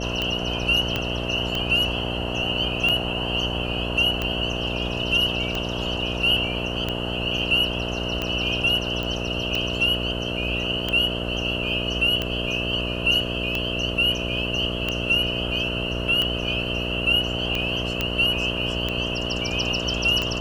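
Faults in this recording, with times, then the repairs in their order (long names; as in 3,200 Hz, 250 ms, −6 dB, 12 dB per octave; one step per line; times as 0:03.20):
mains buzz 60 Hz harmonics 11 −29 dBFS
scratch tick 45 rpm −11 dBFS
0:00.96: click −10 dBFS
0:09.03: click
0:18.01: click −8 dBFS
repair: click removal
hum removal 60 Hz, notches 11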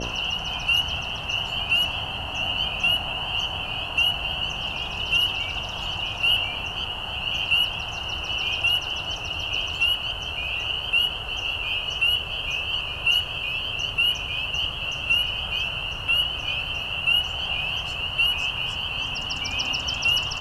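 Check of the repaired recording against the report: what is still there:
0:00.96: click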